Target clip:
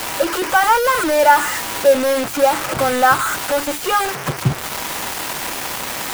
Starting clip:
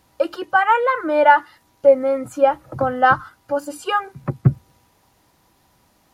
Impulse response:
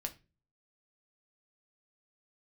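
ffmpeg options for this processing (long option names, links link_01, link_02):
-filter_complex "[0:a]aeval=exprs='val(0)+0.5*0.15*sgn(val(0))':channel_layout=same,lowshelf=frequency=350:gain=-5.5,acrossover=split=2800[link_01][link_02];[link_02]alimiter=limit=-23.5dB:level=0:latency=1[link_03];[link_01][link_03]amix=inputs=2:normalize=0,acrusher=bits=3:mix=0:aa=0.000001"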